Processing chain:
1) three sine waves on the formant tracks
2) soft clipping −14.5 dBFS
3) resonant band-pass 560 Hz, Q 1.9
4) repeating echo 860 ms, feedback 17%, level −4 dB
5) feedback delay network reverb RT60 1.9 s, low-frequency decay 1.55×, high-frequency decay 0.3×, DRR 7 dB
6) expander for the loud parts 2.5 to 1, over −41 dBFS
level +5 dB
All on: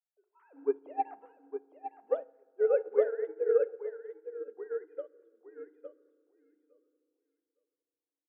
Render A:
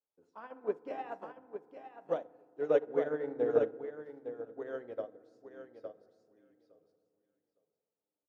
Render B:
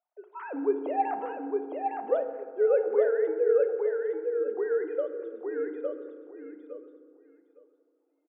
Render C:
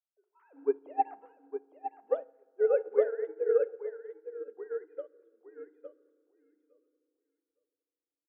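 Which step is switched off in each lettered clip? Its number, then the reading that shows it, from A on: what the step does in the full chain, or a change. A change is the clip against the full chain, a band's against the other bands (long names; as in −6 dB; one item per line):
1, 250 Hz band +9.0 dB
6, 250 Hz band +5.0 dB
2, distortion level −24 dB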